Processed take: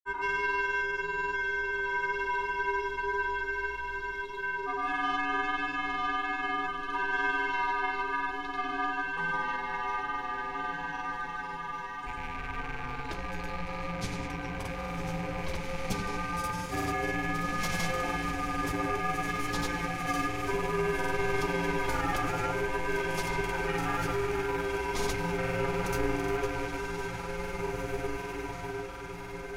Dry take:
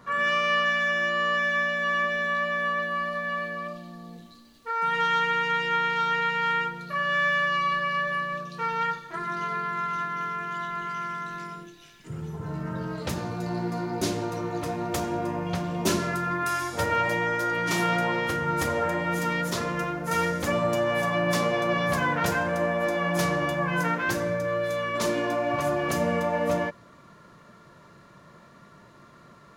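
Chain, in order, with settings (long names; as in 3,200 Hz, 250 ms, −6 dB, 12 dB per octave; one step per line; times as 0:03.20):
loose part that buzzes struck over −36 dBFS, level −26 dBFS
frequency shifter −180 Hz
on a send: feedback delay with all-pass diffusion 1,994 ms, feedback 53%, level −4 dB
on the sum: granular cloud, pitch spread up and down by 0 semitones
level −5 dB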